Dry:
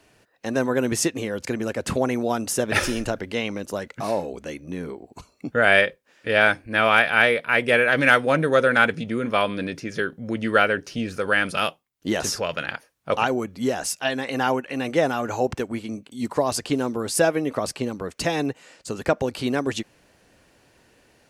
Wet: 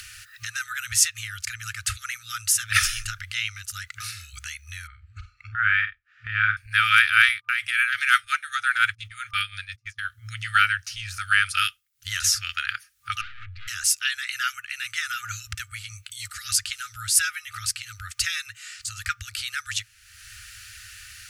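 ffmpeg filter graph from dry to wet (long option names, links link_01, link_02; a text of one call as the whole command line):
ffmpeg -i in.wav -filter_complex "[0:a]asettb=1/sr,asplit=3[link_01][link_02][link_03];[link_01]atrim=end=4.874[link_04];[link_02]atrim=start=4.87:end=6.57,asetpts=PTS-STARTPTS,afade=type=in:duration=0.004:curve=qsin,afade=type=out:start_time=1.696:duration=0.004:curve=qsin,lowpass=1500,asplit=2[link_05][link_06];[link_06]adelay=47,volume=-8.5dB[link_07];[link_05][link_07]amix=inputs=2:normalize=0,atrim=end_sample=74970[link_08];[link_03]atrim=start=6.566[link_09];[link_04][link_08]acrossfade=duration=0.004:curve1=hsin:curve2=qsin[link_10];[link_10][link_09]acrossfade=duration=0.004:curve1=qsin:curve2=hsin,asettb=1/sr,asplit=3[link_11][link_12][link_13];[link_11]atrim=end=7.294[link_14];[link_12]atrim=start=7.29:end=10.05,asetpts=PTS-STARTPTS,afade=type=in:duration=0.004:curve=qsin,afade=type=out:start_time=2.756:duration=0.004:curve=qsin,tremolo=f=5.7:d=0.6,agate=range=-43dB:threshold=-35dB:ratio=16:release=100:detection=peak[link_15];[link_13]atrim=start=10.046[link_16];[link_14][link_15]acrossfade=duration=0.004:curve1=hsin:curve2=qsin[link_17];[link_17][link_16]acrossfade=duration=0.004:curve1=qsin:curve2=hsin,asettb=1/sr,asplit=3[link_18][link_19][link_20];[link_18]atrim=end=13.214[link_21];[link_19]atrim=start=13.21:end=13.68,asetpts=PTS-STARTPTS,afade=type=in:duration=0.004:curve=qsin,afade=type=out:start_time=0.466:duration=0.004:curve=qsin,lowshelf=frequency=110:gain=11,aeval=exprs='(tanh(63.1*val(0)+0.7)-tanh(0.7))/63.1':channel_layout=same,lowpass=frequency=3400:width=0.5412,lowpass=frequency=3400:width=1.3066[link_22];[link_20]atrim=start=13.676[link_23];[link_21][link_22]acrossfade=duration=0.004:curve1=hsin:curve2=qsin[link_24];[link_24][link_23]acrossfade=duration=0.004:curve1=qsin:curve2=hsin,afftfilt=real='re*(1-between(b*sr/4096,110,1200))':imag='im*(1-between(b*sr/4096,110,1200))':win_size=4096:overlap=0.75,highshelf=frequency=3400:gain=8,acompressor=mode=upward:threshold=-30dB:ratio=2.5" out.wav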